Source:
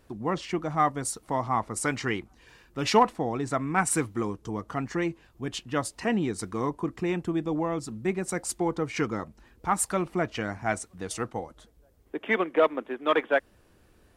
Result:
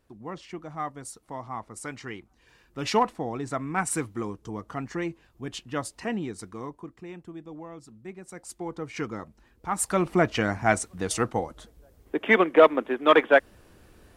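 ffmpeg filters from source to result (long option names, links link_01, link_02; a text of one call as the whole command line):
ffmpeg -i in.wav -af "volume=16.5dB,afade=type=in:start_time=2.19:duration=0.62:silence=0.473151,afade=type=out:start_time=5.88:duration=1.1:silence=0.298538,afade=type=in:start_time=8.29:duration=0.75:silence=0.354813,afade=type=in:start_time=9.7:duration=0.44:silence=0.316228" out.wav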